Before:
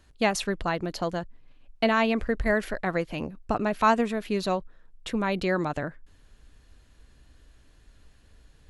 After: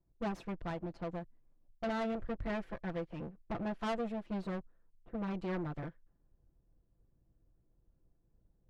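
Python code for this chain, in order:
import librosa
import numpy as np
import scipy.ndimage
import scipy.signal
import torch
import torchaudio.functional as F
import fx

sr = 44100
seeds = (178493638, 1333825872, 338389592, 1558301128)

y = fx.lower_of_two(x, sr, delay_ms=5.9)
y = fx.lowpass(y, sr, hz=1000.0, slope=6)
y = fx.env_lowpass(y, sr, base_hz=600.0, full_db=-27.0)
y = 10.0 ** (-27.0 / 20.0) * np.tanh(y / 10.0 ** (-27.0 / 20.0))
y = fx.upward_expand(y, sr, threshold_db=-45.0, expansion=1.5)
y = y * librosa.db_to_amplitude(-4.5)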